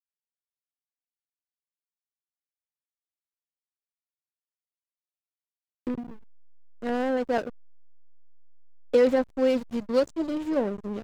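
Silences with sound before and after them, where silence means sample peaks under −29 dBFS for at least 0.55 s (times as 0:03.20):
0:05.99–0:06.83
0:07.49–0:08.94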